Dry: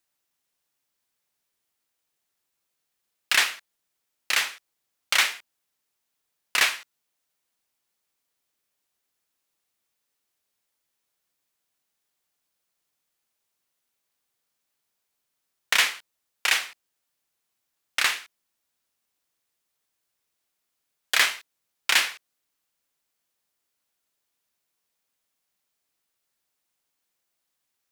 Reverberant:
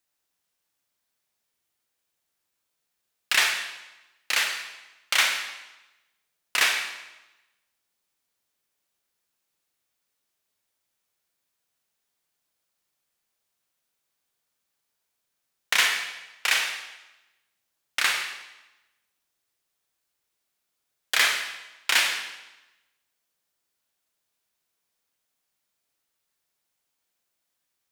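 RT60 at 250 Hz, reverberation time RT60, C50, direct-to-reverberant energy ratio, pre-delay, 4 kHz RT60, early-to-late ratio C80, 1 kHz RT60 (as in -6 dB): 1.0 s, 1.0 s, 4.5 dB, 2.5 dB, 31 ms, 0.90 s, 7.0 dB, 1.0 s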